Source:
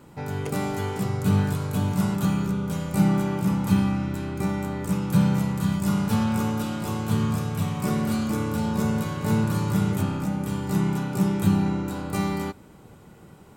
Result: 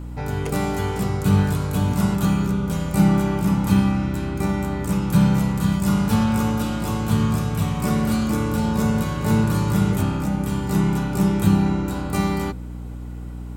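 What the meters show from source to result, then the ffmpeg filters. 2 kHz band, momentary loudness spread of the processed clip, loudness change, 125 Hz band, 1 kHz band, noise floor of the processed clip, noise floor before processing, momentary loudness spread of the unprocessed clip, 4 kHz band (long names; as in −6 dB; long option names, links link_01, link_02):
+4.0 dB, 7 LU, +4.0 dB, +4.0 dB, +4.0 dB, −32 dBFS, −49 dBFS, 6 LU, +4.0 dB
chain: -af "bandreject=frequency=62.12:width_type=h:width=4,bandreject=frequency=124.24:width_type=h:width=4,bandreject=frequency=186.36:width_type=h:width=4,bandreject=frequency=248.48:width_type=h:width=4,bandreject=frequency=310.6:width_type=h:width=4,bandreject=frequency=372.72:width_type=h:width=4,bandreject=frequency=434.84:width_type=h:width=4,bandreject=frequency=496.96:width_type=h:width=4,bandreject=frequency=559.08:width_type=h:width=4,bandreject=frequency=621.2:width_type=h:width=4,aeval=exprs='val(0)+0.0178*(sin(2*PI*60*n/s)+sin(2*PI*2*60*n/s)/2+sin(2*PI*3*60*n/s)/3+sin(2*PI*4*60*n/s)/4+sin(2*PI*5*60*n/s)/5)':channel_layout=same,volume=4dB"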